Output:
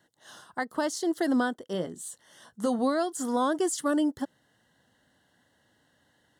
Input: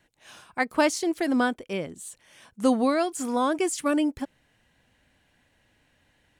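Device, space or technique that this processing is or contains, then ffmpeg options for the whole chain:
PA system with an anti-feedback notch: -filter_complex "[0:a]highpass=120,asuperstop=centerf=2400:order=4:qfactor=2.4,alimiter=limit=-17.5dB:level=0:latency=1:release=362,asettb=1/sr,asplit=3[link_01][link_02][link_03];[link_01]atrim=end=1.734[link_04];[link_02]atrim=start=1.73:end=2.79,asetpts=PTS-STARTPTS,afade=type=in:duration=0.004:curve=qsin,afade=type=out:start_time=1.056:duration=0.004:curve=qsin,asplit=2[link_05][link_06];[link_06]adelay=17,volume=-9dB[link_07];[link_05][link_07]amix=inputs=2:normalize=0,atrim=end_sample=46746[link_08];[link_03]atrim=start=2.786[link_09];[link_04][link_08]acrossfade=duration=0.004:curve1=hsin:curve2=qsin[link_10];[link_10][link_09]acrossfade=duration=0.004:curve1=qsin:curve2=hsin"

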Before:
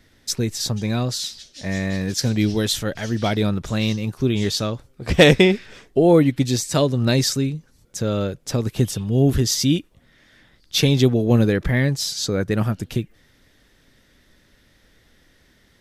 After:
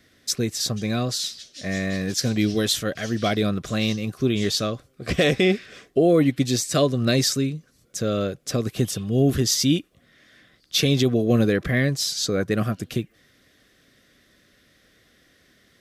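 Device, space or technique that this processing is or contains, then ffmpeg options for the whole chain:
PA system with an anti-feedback notch: -af "highpass=frequency=150:poles=1,asuperstop=centerf=890:order=20:qfactor=4.6,alimiter=limit=-9.5dB:level=0:latency=1:release=70"

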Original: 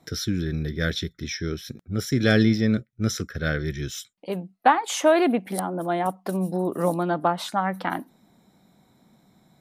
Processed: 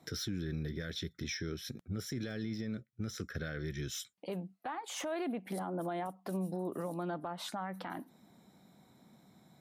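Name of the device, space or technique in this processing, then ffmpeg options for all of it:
podcast mastering chain: -af "highpass=70,deesser=0.65,acompressor=threshold=-31dB:ratio=4,alimiter=level_in=2.5dB:limit=-24dB:level=0:latency=1:release=18,volume=-2.5dB,volume=-2.5dB" -ar 48000 -c:a libmp3lame -b:a 112k

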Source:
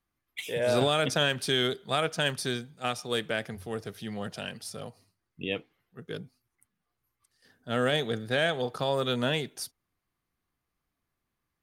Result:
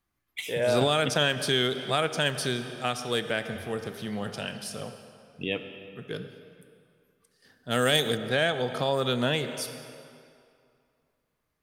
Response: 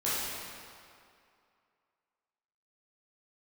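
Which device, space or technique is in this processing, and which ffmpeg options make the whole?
ducked reverb: -filter_complex "[0:a]asplit=3[link_01][link_02][link_03];[1:a]atrim=start_sample=2205[link_04];[link_02][link_04]afir=irnorm=-1:irlink=0[link_05];[link_03]apad=whole_len=512680[link_06];[link_05][link_06]sidechaincompress=threshold=-31dB:ratio=8:attack=16:release=173,volume=-15dB[link_07];[link_01][link_07]amix=inputs=2:normalize=0,asplit=3[link_08][link_09][link_10];[link_08]afade=type=out:start_time=7.7:duration=0.02[link_11];[link_09]aemphasis=mode=production:type=75kf,afade=type=in:start_time=7.7:duration=0.02,afade=type=out:start_time=8.15:duration=0.02[link_12];[link_10]afade=type=in:start_time=8.15:duration=0.02[link_13];[link_11][link_12][link_13]amix=inputs=3:normalize=0,volume=1dB"

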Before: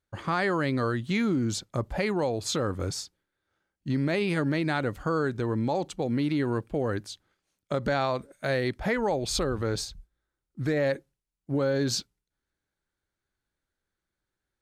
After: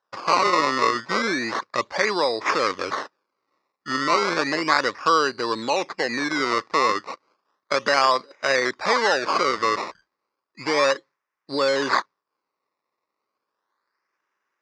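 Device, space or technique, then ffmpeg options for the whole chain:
circuit-bent sampling toy: -af "acrusher=samples=19:mix=1:aa=0.000001:lfo=1:lforange=19:lforate=0.33,highpass=490,equalizer=frequency=720:width_type=q:width=4:gain=-6,equalizer=frequency=1100:width_type=q:width=4:gain=10,equalizer=frequency=1900:width_type=q:width=4:gain=5,equalizer=frequency=3100:width_type=q:width=4:gain=-8,equalizer=frequency=4900:width_type=q:width=4:gain=7,lowpass=frequency=5700:width=0.5412,lowpass=frequency=5700:width=1.3066,volume=8.5dB"

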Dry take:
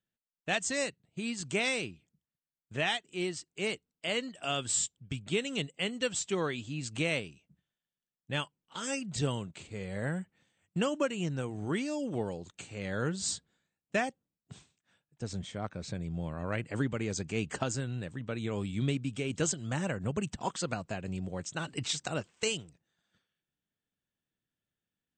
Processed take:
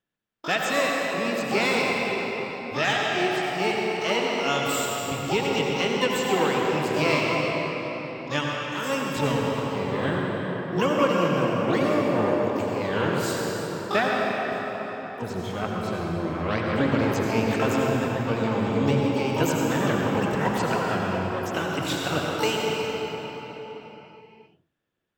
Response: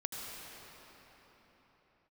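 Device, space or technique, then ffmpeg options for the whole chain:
shimmer-style reverb: -filter_complex "[0:a]asettb=1/sr,asplit=3[link_01][link_02][link_03];[link_01]atrim=end=6.704[link_04];[link_02]atrim=start=6.7:end=8.33,asetpts=PTS-STARTPTS,afade=type=in:duration=0.004:curve=qsin,afade=type=out:start_time=1.626:duration=0.004:curve=qsin,asplit=2[link_05][link_06];[link_06]adelay=33,volume=-6.5dB[link_07];[link_05][link_07]amix=inputs=2:normalize=0,atrim=end_sample=71883[link_08];[link_03]atrim=start=8.326[link_09];[link_04][link_08]acrossfade=duration=0.004:curve1=hsin:curve2=qsin[link_10];[link_10][link_09]acrossfade=duration=0.004:curve1=qsin:curve2=hsin,asplit=2[link_11][link_12];[link_12]asetrate=88200,aresample=44100,atempo=0.5,volume=-5dB[link_13];[link_11][link_13]amix=inputs=2:normalize=0[link_14];[1:a]atrim=start_sample=2205[link_15];[link_14][link_15]afir=irnorm=-1:irlink=0,bass=frequency=250:gain=-5,treble=frequency=4000:gain=-11,volume=9dB"

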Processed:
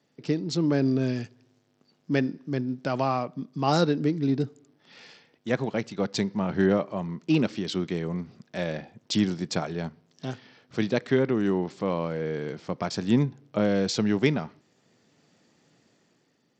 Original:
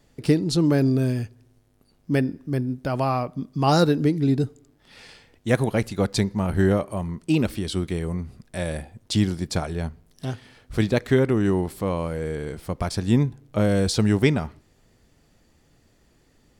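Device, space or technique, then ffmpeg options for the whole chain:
Bluetooth headset: -filter_complex "[0:a]asettb=1/sr,asplit=3[link_01][link_02][link_03];[link_01]atrim=end=1.034[link_04];[link_02]atrim=start=1.03:end=3.01,asetpts=PTS-STARTPTS,afade=type=in:duration=0.004:curve=qsin,afade=type=out:start_time=1.976:duration=0.004:curve=qsin,equalizer=frequency=4700:width_type=o:width=2.9:gain=3[link_05];[link_03]atrim=start=3.006[link_06];[link_04][link_05]acrossfade=duration=0.004:curve1=hsin:curve2=qsin[link_07];[link_07][link_06]acrossfade=duration=0.004:curve1=qsin:curve2=hsin,highpass=frequency=140:width=0.5412,highpass=frequency=140:width=1.3066,dynaudnorm=framelen=110:gausssize=11:maxgain=7dB,aresample=16000,aresample=44100,volume=-7.5dB" -ar 32000 -c:a sbc -b:a 64k

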